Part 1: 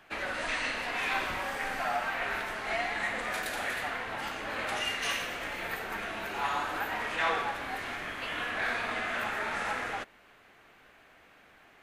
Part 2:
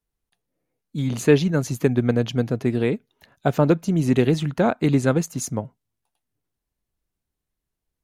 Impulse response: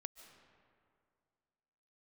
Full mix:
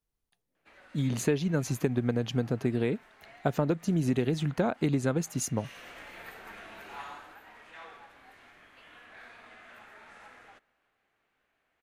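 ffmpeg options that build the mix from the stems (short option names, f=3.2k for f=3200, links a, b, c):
-filter_complex "[0:a]adelay=550,volume=-11.5dB,afade=t=in:st=5.62:d=0.26:silence=0.251189,afade=t=out:st=6.96:d=0.4:silence=0.354813,asplit=2[a][b];[b]volume=-9dB[c];[1:a]volume=-3.5dB[d];[2:a]atrim=start_sample=2205[e];[c][e]afir=irnorm=-1:irlink=0[f];[a][d][f]amix=inputs=3:normalize=0,acompressor=threshold=-23dB:ratio=6"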